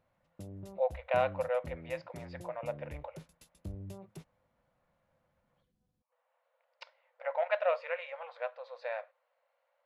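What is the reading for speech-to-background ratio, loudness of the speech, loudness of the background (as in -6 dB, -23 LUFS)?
12.5 dB, -36.0 LUFS, -48.5 LUFS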